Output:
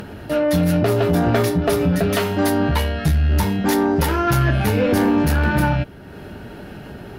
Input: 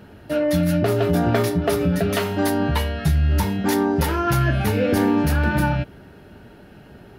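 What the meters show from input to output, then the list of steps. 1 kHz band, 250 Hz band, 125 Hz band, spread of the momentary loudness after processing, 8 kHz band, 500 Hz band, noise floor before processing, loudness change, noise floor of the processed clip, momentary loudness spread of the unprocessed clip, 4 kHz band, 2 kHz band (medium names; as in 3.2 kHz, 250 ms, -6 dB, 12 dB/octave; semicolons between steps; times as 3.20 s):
+2.5 dB, +2.0 dB, +2.0 dB, 19 LU, +2.0 dB, +2.0 dB, -46 dBFS, +2.0 dB, -38 dBFS, 3 LU, +2.0 dB, +2.0 dB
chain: upward compressor, threshold -30 dBFS; valve stage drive 13 dB, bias 0.3; trim +4 dB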